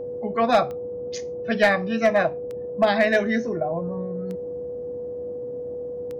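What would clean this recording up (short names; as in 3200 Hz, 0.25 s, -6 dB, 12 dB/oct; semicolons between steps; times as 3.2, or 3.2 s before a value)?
clip repair -10 dBFS; de-click; notch 490 Hz, Q 30; noise print and reduce 30 dB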